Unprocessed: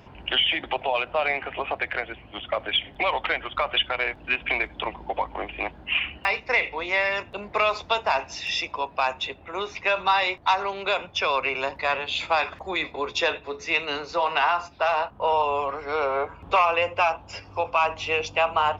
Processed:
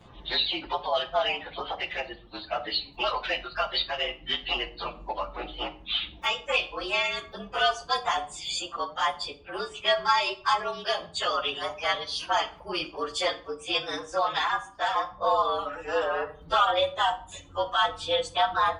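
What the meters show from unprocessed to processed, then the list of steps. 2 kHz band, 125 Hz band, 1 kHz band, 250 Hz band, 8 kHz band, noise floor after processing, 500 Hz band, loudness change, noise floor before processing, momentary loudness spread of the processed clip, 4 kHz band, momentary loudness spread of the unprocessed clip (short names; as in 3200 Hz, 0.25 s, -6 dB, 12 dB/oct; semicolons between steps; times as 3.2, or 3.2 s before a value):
-5.5 dB, -4.5 dB, -2.5 dB, -2.5 dB, n/a, -50 dBFS, -3.0 dB, -3.0 dB, -48 dBFS, 10 LU, 0.0 dB, 8 LU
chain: inharmonic rescaling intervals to 110%; reverb removal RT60 0.74 s; shoebox room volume 540 m³, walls furnished, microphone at 0.81 m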